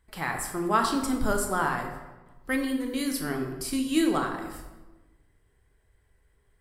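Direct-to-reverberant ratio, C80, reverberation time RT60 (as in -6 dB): 3.0 dB, 7.5 dB, 1.2 s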